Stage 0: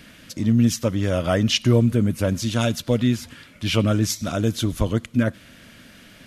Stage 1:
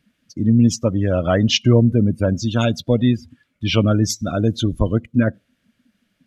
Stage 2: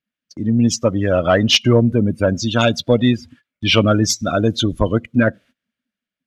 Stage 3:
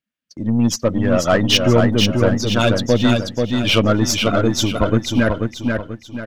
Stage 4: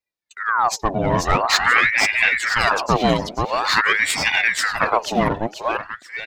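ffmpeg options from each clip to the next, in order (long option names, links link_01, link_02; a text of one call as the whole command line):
ffmpeg -i in.wav -af "afftdn=noise_reduction=26:noise_floor=-30,volume=3.5dB" out.wav
ffmpeg -i in.wav -filter_complex "[0:a]agate=range=-21dB:threshold=-45dB:ratio=16:detection=peak,asplit=2[link_01][link_02];[link_02]highpass=frequency=720:poles=1,volume=8dB,asoftclip=type=tanh:threshold=-3.5dB[link_03];[link_01][link_03]amix=inputs=2:normalize=0,lowpass=frequency=5200:poles=1,volume=-6dB,dynaudnorm=framelen=140:gausssize=9:maxgain=11.5dB,volume=-1dB" out.wav
ffmpeg -i in.wav -filter_complex "[0:a]aeval=exprs='0.841*(cos(1*acos(clip(val(0)/0.841,-1,1)))-cos(1*PI/2))+0.0422*(cos(8*acos(clip(val(0)/0.841,-1,1)))-cos(8*PI/2))':channel_layout=same,asplit=2[link_01][link_02];[link_02]aecho=0:1:486|972|1458|1944|2430:0.631|0.24|0.0911|0.0346|0.0132[link_03];[link_01][link_03]amix=inputs=2:normalize=0,volume=-1.5dB" out.wav
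ffmpeg -i in.wav -af "aeval=exprs='val(0)*sin(2*PI*1300*n/s+1300*0.7/0.47*sin(2*PI*0.47*n/s))':channel_layout=same" out.wav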